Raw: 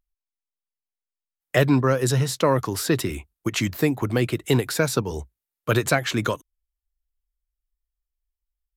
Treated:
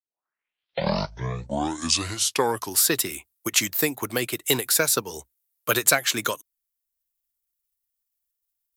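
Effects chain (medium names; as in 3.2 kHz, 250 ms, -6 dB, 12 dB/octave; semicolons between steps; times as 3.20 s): tape start-up on the opening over 2.88 s; transient shaper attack +3 dB, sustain -2 dB; RIAA curve recording; trim -2 dB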